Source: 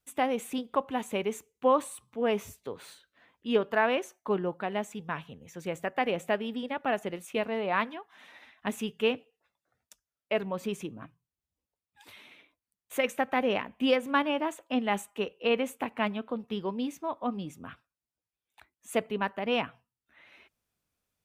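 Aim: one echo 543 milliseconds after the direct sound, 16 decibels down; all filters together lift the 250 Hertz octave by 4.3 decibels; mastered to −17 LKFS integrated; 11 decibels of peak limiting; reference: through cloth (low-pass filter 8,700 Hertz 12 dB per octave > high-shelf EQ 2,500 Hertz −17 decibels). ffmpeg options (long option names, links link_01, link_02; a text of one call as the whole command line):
ffmpeg -i in.wav -af "equalizer=frequency=250:width_type=o:gain=5,alimiter=limit=-22dB:level=0:latency=1,lowpass=8700,highshelf=frequency=2500:gain=-17,aecho=1:1:543:0.158,volume=17.5dB" out.wav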